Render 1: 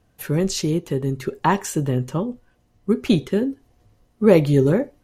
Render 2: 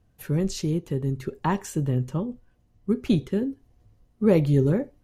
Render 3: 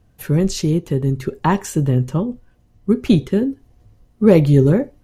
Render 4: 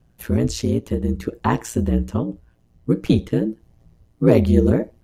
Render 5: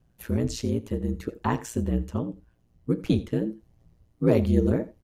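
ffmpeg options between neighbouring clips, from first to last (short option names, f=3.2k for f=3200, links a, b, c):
-af "lowshelf=f=220:g=9.5,volume=-8.5dB"
-af "asoftclip=type=hard:threshold=-9dB,volume=8dB"
-af "aeval=exprs='val(0)*sin(2*PI*58*n/s)':c=same"
-af "aecho=1:1:84:0.119,volume=-6.5dB"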